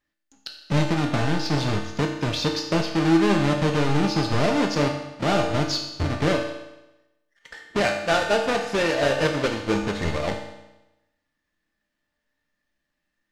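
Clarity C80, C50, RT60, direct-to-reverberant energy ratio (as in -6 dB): 8.0 dB, 6.0 dB, 0.95 s, 1.5 dB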